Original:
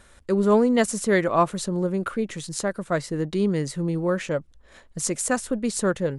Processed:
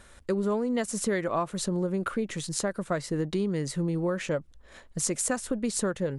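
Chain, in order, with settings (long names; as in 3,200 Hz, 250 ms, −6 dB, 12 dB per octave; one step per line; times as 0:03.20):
downward compressor 10 to 1, threshold −24 dBFS, peak gain reduction 11 dB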